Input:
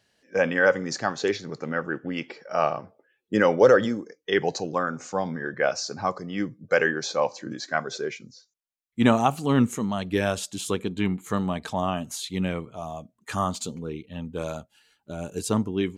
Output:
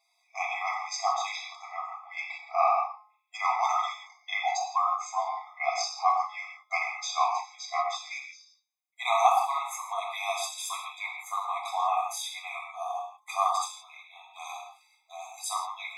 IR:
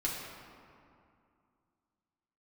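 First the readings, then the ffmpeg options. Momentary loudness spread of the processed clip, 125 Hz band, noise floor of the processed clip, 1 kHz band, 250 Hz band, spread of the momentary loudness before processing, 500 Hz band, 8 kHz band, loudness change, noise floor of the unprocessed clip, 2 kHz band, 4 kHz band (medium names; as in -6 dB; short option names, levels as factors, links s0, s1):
15 LU, under -40 dB, -71 dBFS, +3.5 dB, under -40 dB, 14 LU, -12.5 dB, -0.5 dB, -4.0 dB, -75 dBFS, -6.5 dB, -2.0 dB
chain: -filter_complex "[0:a]bandreject=f=211.5:t=h:w=4,bandreject=f=423:t=h:w=4,bandreject=f=634.5:t=h:w=4,bandreject=f=846:t=h:w=4,bandreject=f=1057.5:t=h:w=4,bandreject=f=1269:t=h:w=4,bandreject=f=1480.5:t=h:w=4,bandreject=f=1692:t=h:w=4,bandreject=f=1903.5:t=h:w=4,bandreject=f=2115:t=h:w=4,bandreject=f=2326.5:t=h:w=4,bandreject=f=2538:t=h:w=4,bandreject=f=2749.5:t=h:w=4,bandreject=f=2961:t=h:w=4,bandreject=f=3172.5:t=h:w=4,bandreject=f=3384:t=h:w=4,bandreject=f=3595.5:t=h:w=4,bandreject=f=3807:t=h:w=4,bandreject=f=4018.5:t=h:w=4,bandreject=f=4230:t=h:w=4,bandreject=f=4441.5:t=h:w=4,bandreject=f=4653:t=h:w=4,bandreject=f=4864.5:t=h:w=4,bandreject=f=5076:t=h:w=4,bandreject=f=5287.5:t=h:w=4,bandreject=f=5499:t=h:w=4,bandreject=f=5710.5:t=h:w=4,bandreject=f=5922:t=h:w=4,bandreject=f=6133.5:t=h:w=4,bandreject=f=6345:t=h:w=4,bandreject=f=6556.5:t=h:w=4,bandreject=f=6768:t=h:w=4[s0];[1:a]atrim=start_sample=2205,afade=t=out:st=0.23:d=0.01,atrim=end_sample=10584[s1];[s0][s1]afir=irnorm=-1:irlink=0,afftfilt=real='re*eq(mod(floor(b*sr/1024/660),2),1)':imag='im*eq(mod(floor(b*sr/1024/660),2),1)':win_size=1024:overlap=0.75"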